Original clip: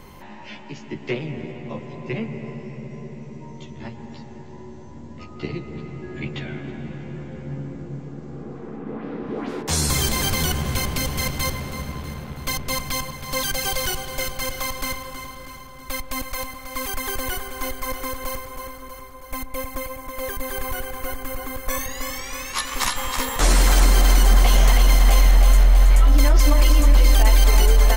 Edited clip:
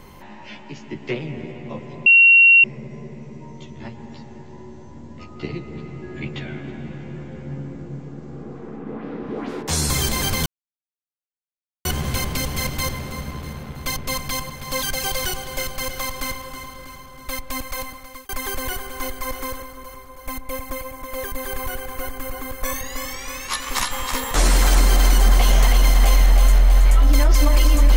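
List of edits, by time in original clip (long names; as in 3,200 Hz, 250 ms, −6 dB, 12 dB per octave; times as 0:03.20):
0:02.06–0:02.64: beep over 2,740 Hz −7.5 dBFS
0:10.46: splice in silence 1.39 s
0:16.51–0:16.90: fade out
0:18.21–0:18.65: remove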